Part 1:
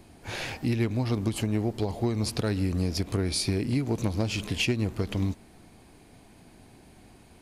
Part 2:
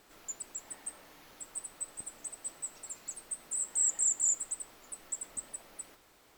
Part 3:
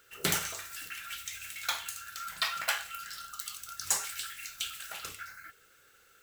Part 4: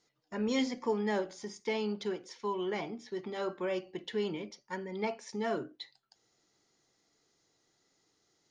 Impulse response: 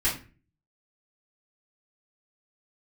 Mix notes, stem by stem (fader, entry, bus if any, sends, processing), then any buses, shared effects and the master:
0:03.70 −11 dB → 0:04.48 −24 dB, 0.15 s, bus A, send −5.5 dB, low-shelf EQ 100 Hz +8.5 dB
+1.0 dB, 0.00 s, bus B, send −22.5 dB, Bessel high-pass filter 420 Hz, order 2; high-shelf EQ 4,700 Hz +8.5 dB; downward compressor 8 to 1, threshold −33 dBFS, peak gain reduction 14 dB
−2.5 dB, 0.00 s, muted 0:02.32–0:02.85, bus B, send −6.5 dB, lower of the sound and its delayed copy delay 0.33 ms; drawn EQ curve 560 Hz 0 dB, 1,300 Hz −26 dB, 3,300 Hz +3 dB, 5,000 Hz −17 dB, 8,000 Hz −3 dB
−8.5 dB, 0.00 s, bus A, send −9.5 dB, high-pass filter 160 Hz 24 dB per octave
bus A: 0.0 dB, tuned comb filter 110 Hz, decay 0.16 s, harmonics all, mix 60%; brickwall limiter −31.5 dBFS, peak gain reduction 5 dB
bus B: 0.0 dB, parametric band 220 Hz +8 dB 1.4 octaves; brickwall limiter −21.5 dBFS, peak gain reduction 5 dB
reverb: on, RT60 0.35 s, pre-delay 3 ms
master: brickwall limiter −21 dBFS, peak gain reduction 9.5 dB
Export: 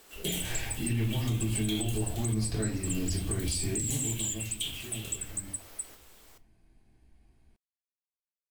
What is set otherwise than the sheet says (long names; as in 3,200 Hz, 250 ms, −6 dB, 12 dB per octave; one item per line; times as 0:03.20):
stem 3: missing lower of the sound and its delayed copy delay 0.33 ms
stem 4: muted